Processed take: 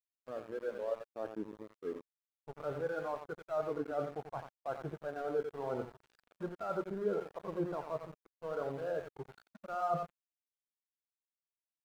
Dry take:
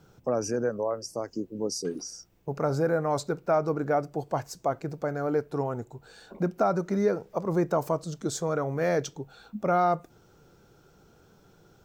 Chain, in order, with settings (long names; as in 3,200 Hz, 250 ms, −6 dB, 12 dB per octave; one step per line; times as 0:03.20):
fade in at the beginning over 1.31 s
in parallel at −1.5 dB: brickwall limiter −22.5 dBFS, peak gain reduction 8.5 dB
on the sum: spectral tilt +4 dB per octave
harmonic and percussive parts rebalanced harmonic +7 dB
mains-hum notches 60/120/180/240 Hz
reversed playback
downward compressor 12 to 1, threshold −30 dBFS, peak gain reduction 19 dB
reversed playback
linear-phase brick-wall low-pass 1,700 Hz
repeating echo 88 ms, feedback 19%, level −5 dB
centre clipping without the shift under −35.5 dBFS
every bin expanded away from the loudest bin 1.5 to 1
level −4 dB